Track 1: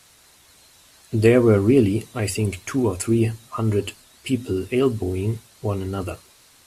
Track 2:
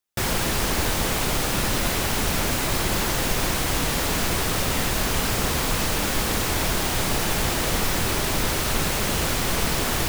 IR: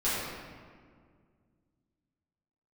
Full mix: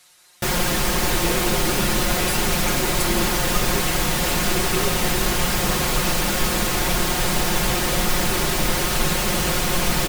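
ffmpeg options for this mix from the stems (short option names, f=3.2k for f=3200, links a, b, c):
-filter_complex "[0:a]lowshelf=f=380:g=-12,acompressor=threshold=-24dB:ratio=6,volume=-1.5dB[a];[1:a]adelay=250,volume=1dB[b];[a][b]amix=inputs=2:normalize=0,aecho=1:1:5.6:0.65"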